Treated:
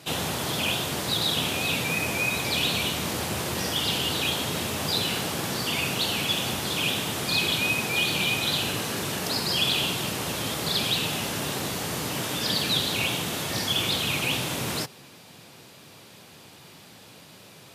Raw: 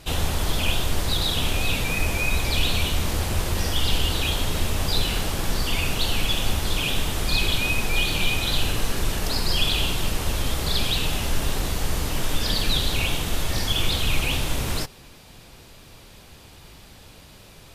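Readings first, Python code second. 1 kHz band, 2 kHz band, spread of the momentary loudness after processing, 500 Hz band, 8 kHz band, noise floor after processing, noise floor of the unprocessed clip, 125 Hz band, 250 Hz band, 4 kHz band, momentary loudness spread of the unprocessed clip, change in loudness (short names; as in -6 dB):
0.0 dB, 0.0 dB, 5 LU, 0.0 dB, 0.0 dB, -49 dBFS, -47 dBFS, -6.0 dB, 0.0 dB, 0.0 dB, 4 LU, -1.0 dB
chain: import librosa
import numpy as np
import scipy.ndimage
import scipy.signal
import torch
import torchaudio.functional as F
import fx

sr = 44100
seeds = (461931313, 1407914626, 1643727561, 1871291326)

y = scipy.signal.sosfilt(scipy.signal.butter(4, 120.0, 'highpass', fs=sr, output='sos'), x)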